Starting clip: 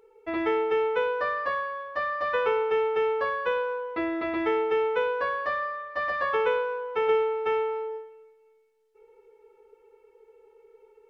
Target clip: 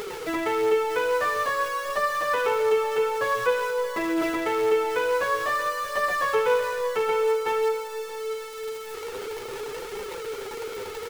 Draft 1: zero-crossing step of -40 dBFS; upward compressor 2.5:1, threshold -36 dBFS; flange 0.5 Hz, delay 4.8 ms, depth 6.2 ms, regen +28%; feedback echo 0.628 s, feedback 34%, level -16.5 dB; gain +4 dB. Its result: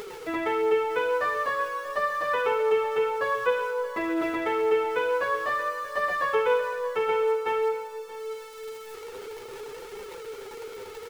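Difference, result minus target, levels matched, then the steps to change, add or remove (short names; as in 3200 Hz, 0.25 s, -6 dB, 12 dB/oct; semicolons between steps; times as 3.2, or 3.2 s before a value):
zero-crossing step: distortion -9 dB
change: zero-crossing step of -29.5 dBFS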